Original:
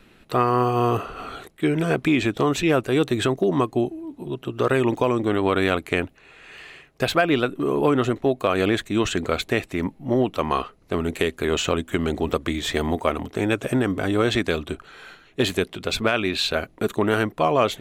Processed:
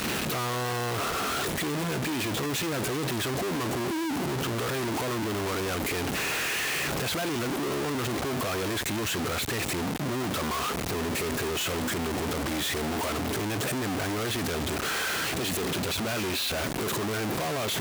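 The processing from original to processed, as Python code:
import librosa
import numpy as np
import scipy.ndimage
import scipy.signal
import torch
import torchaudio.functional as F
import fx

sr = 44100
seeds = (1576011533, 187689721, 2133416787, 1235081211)

y = np.sign(x) * np.sqrt(np.mean(np.square(x)))
y = scipy.signal.sosfilt(scipy.signal.butter(2, 75.0, 'highpass', fs=sr, output='sos'), y)
y = y * librosa.db_to_amplitude(-6.0)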